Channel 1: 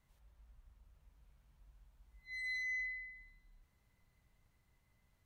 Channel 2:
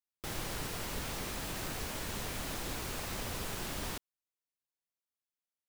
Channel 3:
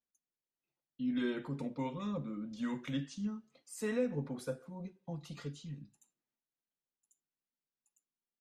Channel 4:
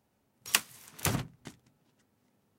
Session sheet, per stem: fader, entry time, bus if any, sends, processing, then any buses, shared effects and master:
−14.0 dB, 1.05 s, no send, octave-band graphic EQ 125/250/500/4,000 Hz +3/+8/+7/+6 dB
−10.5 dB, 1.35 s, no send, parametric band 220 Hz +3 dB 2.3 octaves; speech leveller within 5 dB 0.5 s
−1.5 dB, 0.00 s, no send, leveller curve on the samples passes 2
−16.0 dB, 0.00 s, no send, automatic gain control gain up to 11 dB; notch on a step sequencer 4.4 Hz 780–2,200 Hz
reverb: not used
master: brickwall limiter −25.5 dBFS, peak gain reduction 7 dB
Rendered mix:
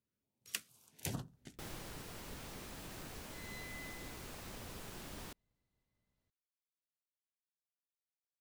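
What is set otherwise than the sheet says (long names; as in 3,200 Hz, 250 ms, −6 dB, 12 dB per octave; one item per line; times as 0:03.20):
stem 3: muted
master: missing brickwall limiter −25.5 dBFS, peak gain reduction 7 dB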